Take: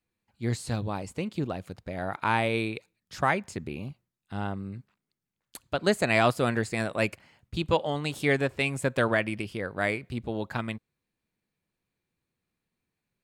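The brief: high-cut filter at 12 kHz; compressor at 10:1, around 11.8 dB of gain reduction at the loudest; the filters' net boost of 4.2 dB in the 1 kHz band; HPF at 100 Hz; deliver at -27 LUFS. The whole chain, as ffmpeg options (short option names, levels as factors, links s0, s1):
-af "highpass=100,lowpass=12000,equalizer=f=1000:t=o:g=5.5,acompressor=threshold=0.0398:ratio=10,volume=2.51"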